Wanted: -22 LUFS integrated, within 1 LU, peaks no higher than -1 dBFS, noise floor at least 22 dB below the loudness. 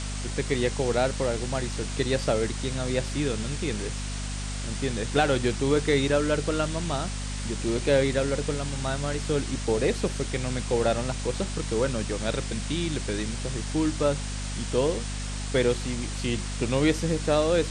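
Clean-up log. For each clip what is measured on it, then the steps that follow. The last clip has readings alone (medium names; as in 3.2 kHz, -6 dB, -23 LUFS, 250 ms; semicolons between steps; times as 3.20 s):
hum 50 Hz; highest harmonic 250 Hz; hum level -30 dBFS; noise floor -32 dBFS; noise floor target -50 dBFS; loudness -27.5 LUFS; peak level -8.5 dBFS; loudness target -22.0 LUFS
-> hum notches 50/100/150/200/250 Hz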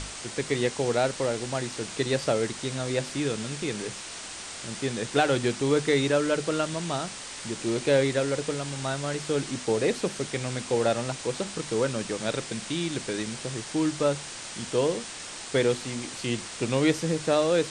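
hum not found; noise floor -39 dBFS; noise floor target -50 dBFS
-> noise print and reduce 11 dB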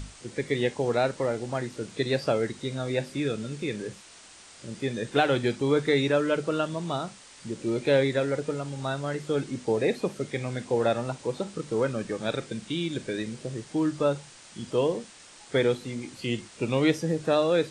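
noise floor -50 dBFS; loudness -28.0 LUFS; peak level -9.5 dBFS; loudness target -22.0 LUFS
-> trim +6 dB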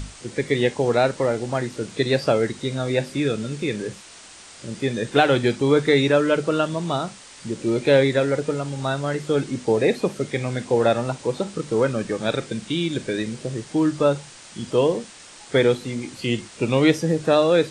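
loudness -22.0 LUFS; peak level -3.5 dBFS; noise floor -44 dBFS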